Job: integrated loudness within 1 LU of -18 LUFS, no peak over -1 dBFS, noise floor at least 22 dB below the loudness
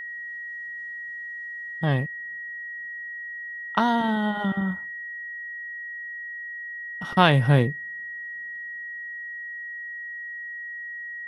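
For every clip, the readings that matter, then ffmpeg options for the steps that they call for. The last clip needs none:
steady tone 1900 Hz; tone level -33 dBFS; loudness -28.0 LUFS; peak -2.5 dBFS; loudness target -18.0 LUFS
-> -af "bandreject=f=1.9k:w=30"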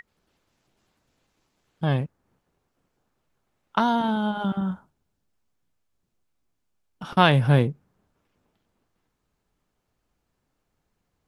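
steady tone none; loudness -23.5 LUFS; peak -3.0 dBFS; loudness target -18.0 LUFS
-> -af "volume=5.5dB,alimiter=limit=-1dB:level=0:latency=1"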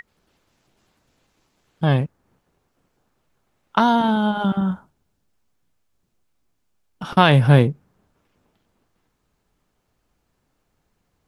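loudness -18.5 LUFS; peak -1.0 dBFS; noise floor -72 dBFS

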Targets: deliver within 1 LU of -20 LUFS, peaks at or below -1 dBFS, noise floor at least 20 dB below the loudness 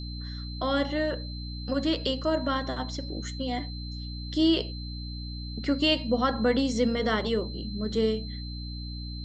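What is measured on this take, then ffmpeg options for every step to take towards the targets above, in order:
hum 60 Hz; harmonics up to 300 Hz; hum level -34 dBFS; steady tone 4100 Hz; tone level -42 dBFS; loudness -29.0 LUFS; peak -12.0 dBFS; loudness target -20.0 LUFS
-> -af "bandreject=f=60:t=h:w=6,bandreject=f=120:t=h:w=6,bandreject=f=180:t=h:w=6,bandreject=f=240:t=h:w=6,bandreject=f=300:t=h:w=6"
-af "bandreject=f=4.1k:w=30"
-af "volume=9dB"

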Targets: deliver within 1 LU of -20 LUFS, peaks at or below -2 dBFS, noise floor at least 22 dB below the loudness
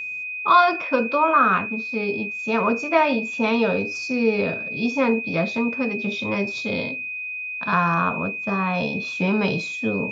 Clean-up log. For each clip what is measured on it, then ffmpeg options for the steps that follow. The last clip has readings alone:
steady tone 2500 Hz; tone level -28 dBFS; loudness -22.0 LUFS; peak -5.5 dBFS; loudness target -20.0 LUFS
-> -af "bandreject=f=2.5k:w=30"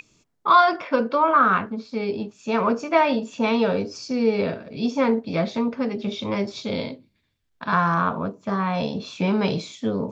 steady tone none; loudness -23.0 LUFS; peak -6.0 dBFS; loudness target -20.0 LUFS
-> -af "volume=3dB"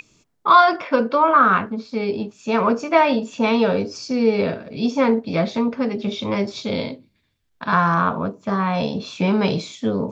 loudness -20.0 LUFS; peak -3.0 dBFS; noise floor -68 dBFS

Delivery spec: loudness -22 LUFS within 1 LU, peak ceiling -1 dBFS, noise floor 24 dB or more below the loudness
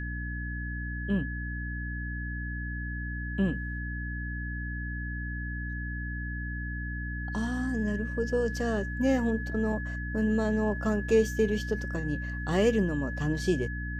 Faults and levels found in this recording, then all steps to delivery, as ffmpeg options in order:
hum 60 Hz; harmonics up to 300 Hz; hum level -33 dBFS; steady tone 1700 Hz; tone level -38 dBFS; loudness -31.0 LUFS; peak -12.5 dBFS; loudness target -22.0 LUFS
-> -af "bandreject=f=60:t=h:w=6,bandreject=f=120:t=h:w=6,bandreject=f=180:t=h:w=6,bandreject=f=240:t=h:w=6,bandreject=f=300:t=h:w=6"
-af "bandreject=f=1.7k:w=30"
-af "volume=9dB"

